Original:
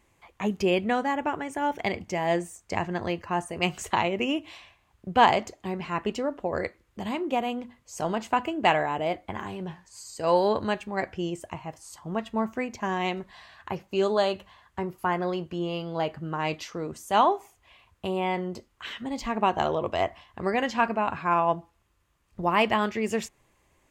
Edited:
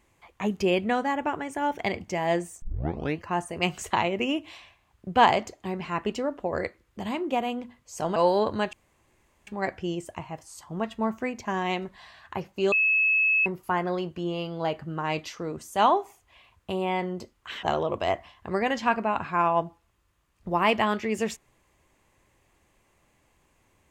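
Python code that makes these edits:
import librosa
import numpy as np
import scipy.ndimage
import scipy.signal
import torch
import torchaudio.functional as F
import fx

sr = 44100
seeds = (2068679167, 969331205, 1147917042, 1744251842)

y = fx.edit(x, sr, fx.tape_start(start_s=2.62, length_s=0.57),
    fx.cut(start_s=8.16, length_s=2.09),
    fx.insert_room_tone(at_s=10.82, length_s=0.74),
    fx.bleep(start_s=14.07, length_s=0.74, hz=2590.0, db=-19.0),
    fx.cut(start_s=18.98, length_s=0.57), tone=tone)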